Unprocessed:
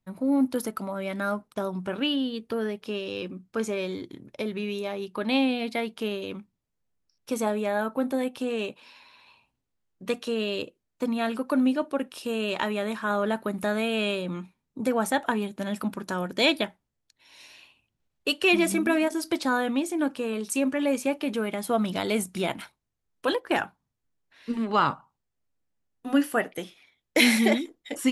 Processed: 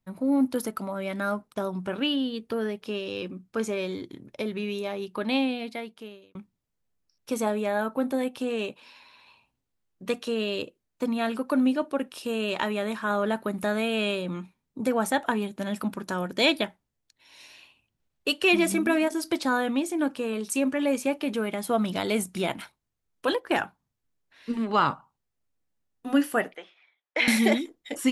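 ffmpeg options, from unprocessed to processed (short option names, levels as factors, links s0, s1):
-filter_complex "[0:a]asettb=1/sr,asplit=3[s0][s1][s2];[s0]atrim=end=26.554[s3];[s1]atrim=start=26.55:end=27.28,asetpts=PTS-STARTPTS,afade=t=in:d=0.004:c=qsin,afade=t=out:st=0.726:d=0.004:c=qsin,highpass=710,lowpass=2400[s4];[s2]atrim=start=27.276[s5];[s3][s4]acrossfade=d=0.004:c1=hsin:c2=qsin[s6];[s6][s5]acrossfade=d=0.004:c1=qsin:c2=hsin,asplit=2[s7][s8];[s7]atrim=end=6.35,asetpts=PTS-STARTPTS,afade=t=out:st=5.18:d=1.17[s9];[s8]atrim=start=6.35,asetpts=PTS-STARTPTS,afade=t=in:d=0.004:c=hsin[s10];[s9][s10]concat=n=2:v=0:a=1"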